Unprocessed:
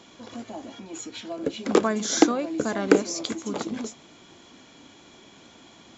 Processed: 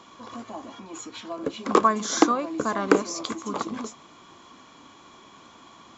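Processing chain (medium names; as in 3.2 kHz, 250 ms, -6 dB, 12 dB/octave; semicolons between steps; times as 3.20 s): peaking EQ 1.1 kHz +14.5 dB 0.44 oct; trim -2 dB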